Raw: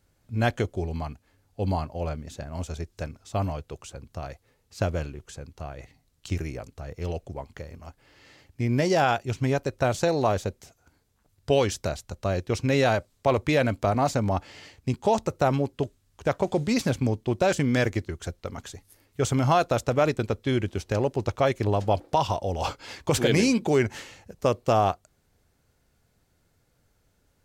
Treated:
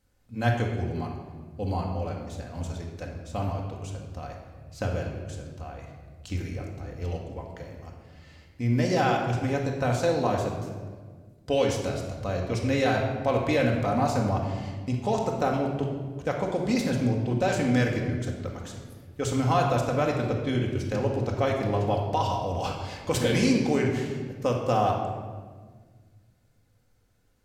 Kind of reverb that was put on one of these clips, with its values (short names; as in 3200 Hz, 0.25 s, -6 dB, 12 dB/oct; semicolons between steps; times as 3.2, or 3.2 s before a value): shoebox room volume 1600 m³, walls mixed, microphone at 2 m; gain -5 dB